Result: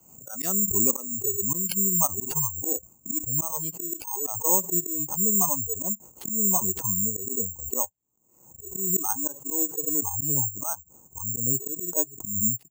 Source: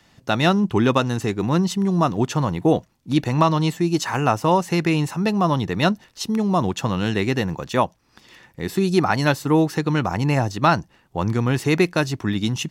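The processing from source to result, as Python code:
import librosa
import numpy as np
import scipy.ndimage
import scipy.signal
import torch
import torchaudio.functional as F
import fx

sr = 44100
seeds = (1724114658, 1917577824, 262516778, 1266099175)

y = fx.wiener(x, sr, points=25)
y = fx.lowpass(y, sr, hz=fx.steps((0.0, 3300.0), (4.02, 1300.0)), slope=12)
y = fx.noise_reduce_blind(y, sr, reduce_db=28)
y = scipy.signal.sosfilt(scipy.signal.butter(2, 61.0, 'highpass', fs=sr, output='sos'), y)
y = fx.peak_eq(y, sr, hz=520.0, db=2.0, octaves=2.4)
y = fx.rider(y, sr, range_db=3, speed_s=0.5)
y = fx.auto_swell(y, sr, attack_ms=158.0)
y = (np.kron(y[::6], np.eye(6)[0]) * 6)[:len(y)]
y = fx.pre_swell(y, sr, db_per_s=70.0)
y = y * 10.0 ** (-9.5 / 20.0)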